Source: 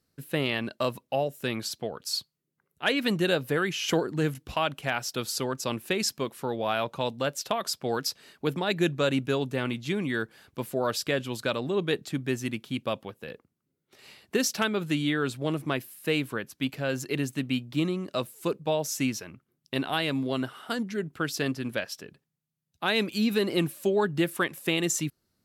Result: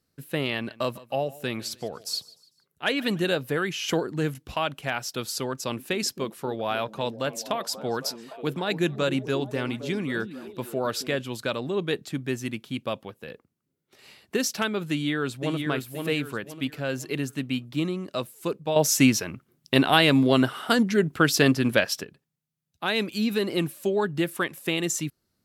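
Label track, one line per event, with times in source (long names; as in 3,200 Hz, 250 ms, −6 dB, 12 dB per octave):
0.530000	3.370000	repeating echo 149 ms, feedback 39%, level −20.5 dB
5.520000	11.160000	echo through a band-pass that steps 268 ms, band-pass from 240 Hz, each repeat 0.7 octaves, level −8 dB
14.900000	15.630000	delay throw 520 ms, feedback 35%, level −5 dB
18.760000	22.040000	clip gain +9.5 dB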